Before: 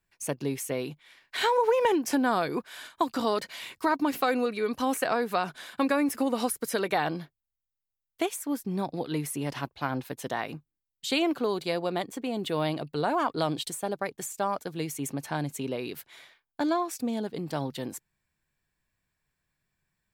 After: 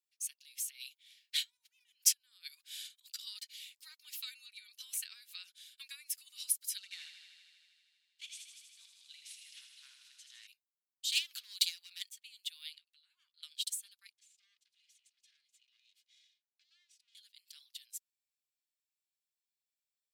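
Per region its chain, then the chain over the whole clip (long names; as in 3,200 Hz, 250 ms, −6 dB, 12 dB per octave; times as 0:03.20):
0:00.68–0:03.19: high-pass filter 210 Hz 24 dB per octave + compressor whose output falls as the input rises −32 dBFS, ratio −0.5
0:06.78–0:10.47: variable-slope delta modulation 64 kbit/s + high-frequency loss of the air 66 metres + feedback echo with a high-pass in the loop 79 ms, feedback 80%, high-pass 200 Hz, level −6 dB
0:11.12–0:12.09: hard clipping −23 dBFS + parametric band 480 Hz +7.5 dB 0.49 octaves + envelope flattener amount 70%
0:12.78–0:13.43: downward compressor 8 to 1, threshold −39 dBFS + high-shelf EQ 5,000 Hz −10.5 dB + double-tracking delay 12 ms −6 dB
0:14.13–0:17.15: lower of the sound and its delayed copy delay 2.4 ms + downward compressor 3 to 1, threshold −48 dBFS + high-frequency loss of the air 88 metres
whole clip: inverse Chebyshev high-pass filter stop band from 670 Hz, stop band 70 dB; expander for the loud parts 1.5 to 1, over −48 dBFS; level +3.5 dB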